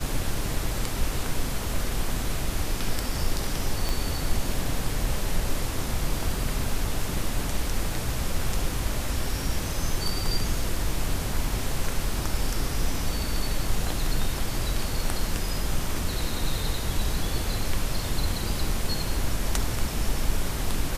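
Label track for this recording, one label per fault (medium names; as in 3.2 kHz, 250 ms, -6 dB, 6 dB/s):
3.890000	3.890000	pop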